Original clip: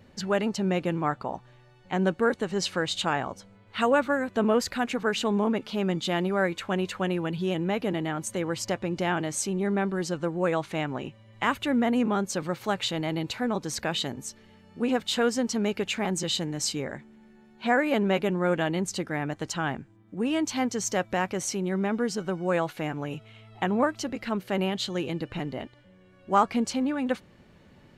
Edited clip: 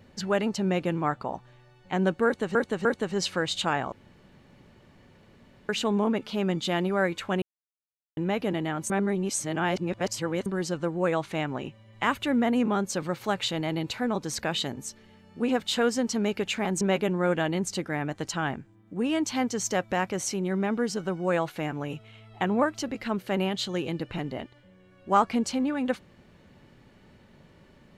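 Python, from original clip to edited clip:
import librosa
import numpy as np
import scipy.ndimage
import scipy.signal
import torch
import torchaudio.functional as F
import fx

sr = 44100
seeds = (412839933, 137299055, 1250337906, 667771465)

y = fx.edit(x, sr, fx.repeat(start_s=2.25, length_s=0.3, count=3),
    fx.room_tone_fill(start_s=3.32, length_s=1.77),
    fx.silence(start_s=6.82, length_s=0.75),
    fx.reverse_span(start_s=8.3, length_s=1.56),
    fx.cut(start_s=16.21, length_s=1.81), tone=tone)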